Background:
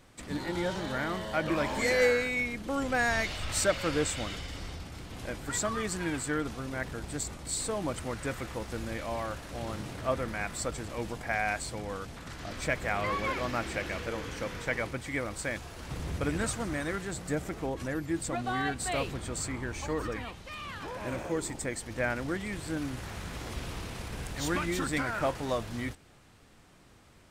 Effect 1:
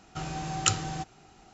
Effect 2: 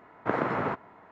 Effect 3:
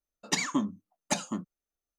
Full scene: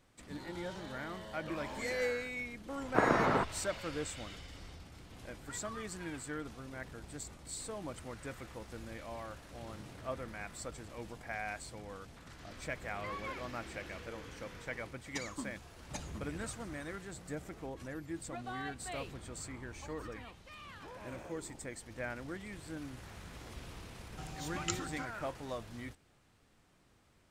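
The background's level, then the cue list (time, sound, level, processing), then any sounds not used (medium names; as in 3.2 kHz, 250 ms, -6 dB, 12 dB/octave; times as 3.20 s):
background -10 dB
2.69 s: add 2 -0.5 dB
14.83 s: add 3 -15 dB
24.02 s: add 1 -12.5 dB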